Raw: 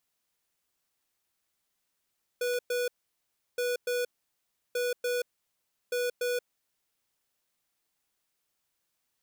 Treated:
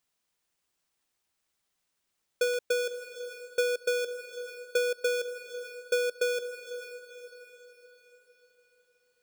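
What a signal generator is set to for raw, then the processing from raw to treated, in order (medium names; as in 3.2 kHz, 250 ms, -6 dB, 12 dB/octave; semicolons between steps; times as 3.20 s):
beep pattern square 490 Hz, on 0.18 s, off 0.11 s, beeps 2, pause 0.70 s, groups 4, -29.5 dBFS
peaking EQ 13 kHz -12.5 dB 0.22 oct; transient shaper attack +7 dB, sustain -2 dB; on a send: echo that smears into a reverb 512 ms, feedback 45%, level -11 dB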